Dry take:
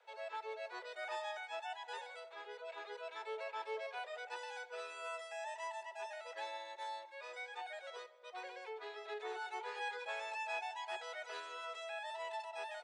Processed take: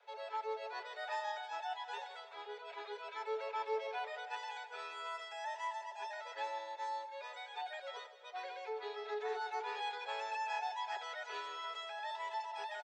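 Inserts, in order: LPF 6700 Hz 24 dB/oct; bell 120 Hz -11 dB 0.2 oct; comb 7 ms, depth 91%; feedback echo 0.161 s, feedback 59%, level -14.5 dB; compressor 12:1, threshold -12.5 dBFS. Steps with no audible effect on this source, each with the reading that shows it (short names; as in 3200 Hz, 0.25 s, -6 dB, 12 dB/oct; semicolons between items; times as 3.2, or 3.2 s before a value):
bell 120 Hz: input band starts at 320 Hz; compressor, threshold -12.5 dBFS: input peak -27.0 dBFS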